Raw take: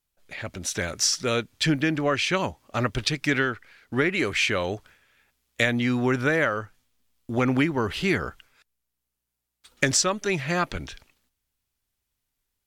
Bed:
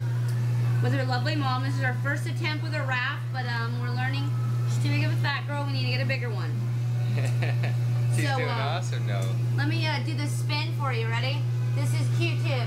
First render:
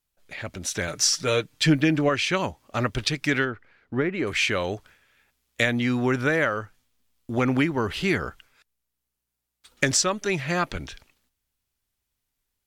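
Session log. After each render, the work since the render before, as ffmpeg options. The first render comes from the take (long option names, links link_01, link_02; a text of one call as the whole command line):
ffmpeg -i in.wav -filter_complex "[0:a]asettb=1/sr,asplit=3[link_01][link_02][link_03];[link_01]atrim=end=0.874[link_04];[link_02]atrim=start=0.87:end=2.09,asetpts=PTS-STARTPTS,afade=type=in:duration=0.004:curve=qsin,afade=type=out:start_time=1.216:duration=0.004:curve=qsin,aecho=1:1:6.6:0.6,atrim=end_sample=53802[link_05];[link_03]atrim=start=2.086[link_06];[link_04][link_05]acrossfade=duration=0.004:curve1=hsin:curve2=qsin[link_07];[link_07][link_06]acrossfade=duration=0.004:curve1=qsin:curve2=hsin,asplit=3[link_08][link_09][link_10];[link_08]afade=type=out:start_time=3.44:duration=0.02[link_11];[link_09]lowpass=frequency=1000:poles=1,afade=type=in:start_time=3.44:duration=0.02,afade=type=out:start_time=4.26:duration=0.02[link_12];[link_10]afade=type=in:start_time=4.26:duration=0.02[link_13];[link_11][link_12][link_13]amix=inputs=3:normalize=0" out.wav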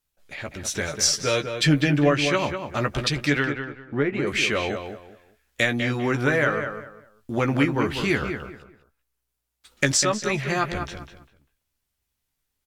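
ffmpeg -i in.wav -filter_complex "[0:a]asplit=2[link_01][link_02];[link_02]adelay=14,volume=-7dB[link_03];[link_01][link_03]amix=inputs=2:normalize=0,asplit=2[link_04][link_05];[link_05]adelay=198,lowpass=frequency=2400:poles=1,volume=-7dB,asplit=2[link_06][link_07];[link_07]adelay=198,lowpass=frequency=2400:poles=1,volume=0.27,asplit=2[link_08][link_09];[link_09]adelay=198,lowpass=frequency=2400:poles=1,volume=0.27[link_10];[link_04][link_06][link_08][link_10]amix=inputs=4:normalize=0" out.wav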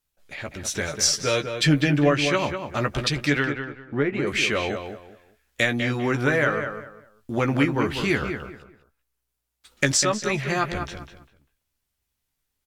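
ffmpeg -i in.wav -af anull out.wav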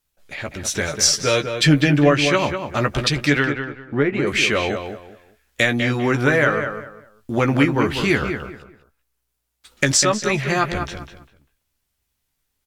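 ffmpeg -i in.wav -af "volume=4.5dB,alimiter=limit=-2dB:level=0:latency=1" out.wav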